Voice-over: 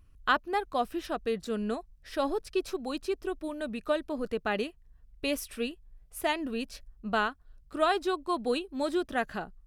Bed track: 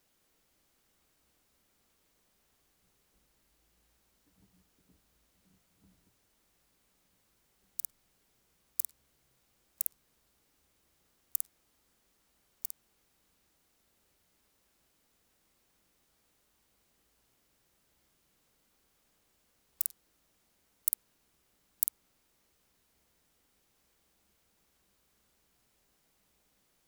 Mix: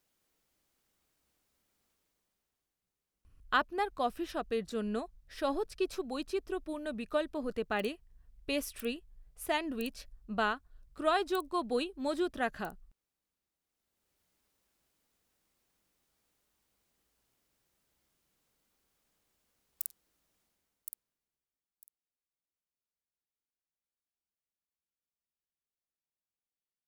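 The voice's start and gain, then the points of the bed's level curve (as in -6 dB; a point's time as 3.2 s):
3.25 s, -3.0 dB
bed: 1.9 s -5.5 dB
2.8 s -17 dB
13.58 s -17 dB
14.22 s -5.5 dB
20.41 s -5.5 dB
21.74 s -30.5 dB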